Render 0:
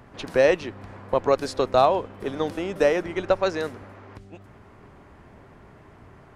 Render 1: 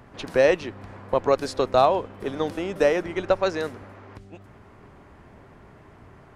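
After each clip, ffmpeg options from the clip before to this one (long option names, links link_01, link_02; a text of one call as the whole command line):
ffmpeg -i in.wav -af anull out.wav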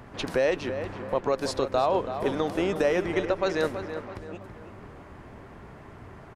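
ffmpeg -i in.wav -filter_complex "[0:a]alimiter=limit=-17.5dB:level=0:latency=1:release=229,asplit=2[link_01][link_02];[link_02]adelay=329,lowpass=frequency=2700:poles=1,volume=-9dB,asplit=2[link_03][link_04];[link_04]adelay=329,lowpass=frequency=2700:poles=1,volume=0.44,asplit=2[link_05][link_06];[link_06]adelay=329,lowpass=frequency=2700:poles=1,volume=0.44,asplit=2[link_07][link_08];[link_08]adelay=329,lowpass=frequency=2700:poles=1,volume=0.44,asplit=2[link_09][link_10];[link_10]adelay=329,lowpass=frequency=2700:poles=1,volume=0.44[link_11];[link_01][link_03][link_05][link_07][link_09][link_11]amix=inputs=6:normalize=0,volume=3dB" out.wav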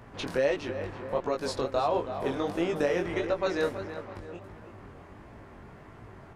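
ffmpeg -i in.wav -af "flanger=delay=17.5:depth=5.7:speed=1.5" out.wav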